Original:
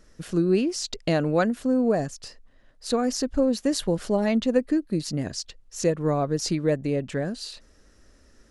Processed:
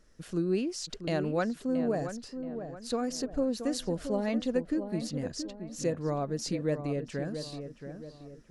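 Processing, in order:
feedback echo with a low-pass in the loop 676 ms, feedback 44%, low-pass 1,700 Hz, level −8.5 dB
level −7.5 dB

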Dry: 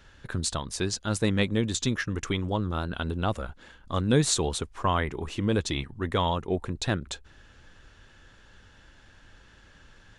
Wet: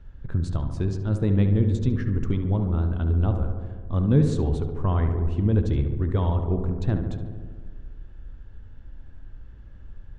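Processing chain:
spectral tilt −4.5 dB per octave
feedback echo with a low-pass in the loop 71 ms, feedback 77%, low-pass 2,300 Hz, level −8 dB
on a send at −13 dB: convolution reverb RT60 1.1 s, pre-delay 3 ms
on the sum: level −7.5 dB

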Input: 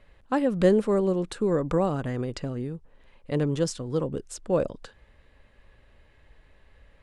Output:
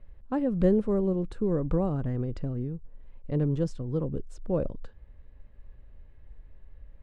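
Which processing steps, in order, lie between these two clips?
spectral tilt −3.5 dB per octave
level −8.5 dB

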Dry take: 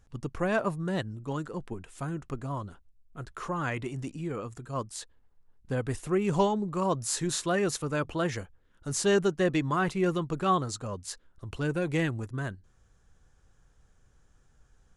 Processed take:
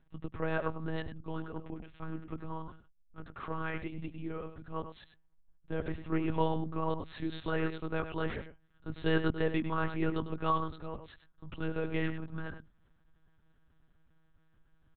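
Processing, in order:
notch filter 690 Hz
slap from a distant wall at 17 metres, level −10 dB
one-pitch LPC vocoder at 8 kHz 160 Hz
level −4.5 dB

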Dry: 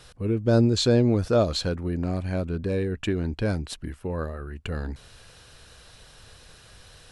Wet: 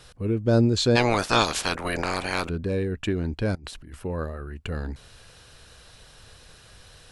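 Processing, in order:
0:00.95–0:02.48: ceiling on every frequency bin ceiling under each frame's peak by 30 dB
0:03.55–0:04.05: compressor whose output falls as the input rises −42 dBFS, ratio −1

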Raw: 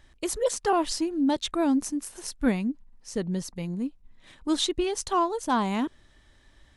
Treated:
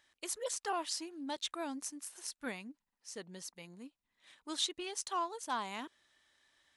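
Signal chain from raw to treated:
high-pass filter 1,300 Hz 6 dB per octave
level −6 dB

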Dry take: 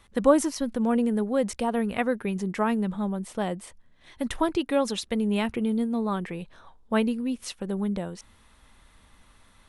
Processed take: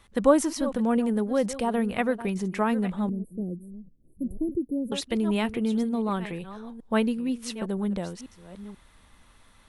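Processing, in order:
delay that plays each chunk backwards 486 ms, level −13.5 dB
0:03.09–0:04.92: inverse Chebyshev band-stop filter 1,300–5,000 Hz, stop band 70 dB

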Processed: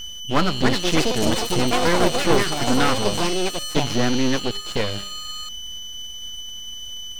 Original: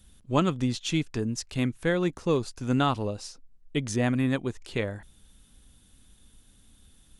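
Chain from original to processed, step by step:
variable-slope delta modulation 32 kbit/s
hum removal 199.9 Hz, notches 27
steady tone 3,000 Hz −39 dBFS
in parallel at −6.5 dB: hard clipping −28 dBFS, distortion −6 dB
on the sum: delay with pitch and tempo change per echo 398 ms, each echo +6 semitones, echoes 3
half-wave rectification
level +8.5 dB

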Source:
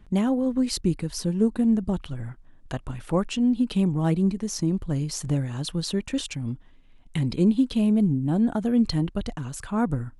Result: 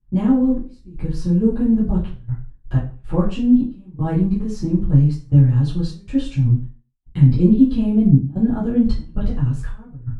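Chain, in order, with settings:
noise gate −45 dBFS, range −25 dB
gate pattern "xxx..xxxxxx.xxx." 79 BPM −24 dB
RIAA equalisation playback
convolution reverb RT60 0.40 s, pre-delay 3 ms, DRR −10 dB
level −10 dB

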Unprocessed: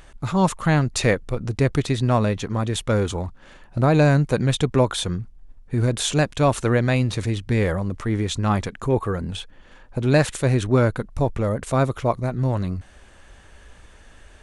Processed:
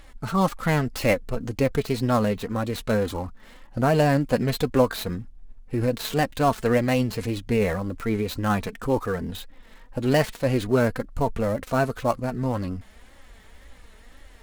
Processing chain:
gap after every zero crossing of 0.058 ms
flanger 1.9 Hz, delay 3.5 ms, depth 1.2 ms, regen +34%
formants moved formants +2 semitones
level +2 dB

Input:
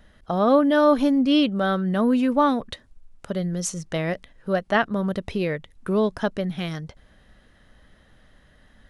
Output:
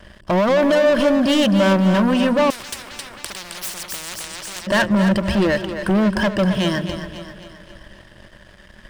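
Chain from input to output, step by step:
EQ curve with evenly spaced ripples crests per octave 1.3, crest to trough 15 dB
brickwall limiter −12.5 dBFS, peak gain reduction 8.5 dB
leveller curve on the samples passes 3
echo with a time of its own for lows and highs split 340 Hz, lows 189 ms, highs 266 ms, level −9 dB
0:02.50–0:04.67: every bin compressed towards the loudest bin 10 to 1

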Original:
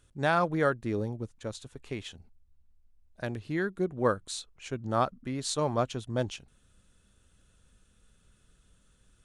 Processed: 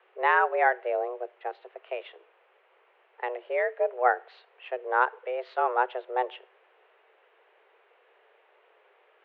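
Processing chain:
background noise pink −63 dBFS
on a send at −22 dB: convolution reverb RT60 0.50 s, pre-delay 21 ms
on the sum: single-sideband voice off tune +250 Hz 160–2,600 Hz
level +3.5 dB

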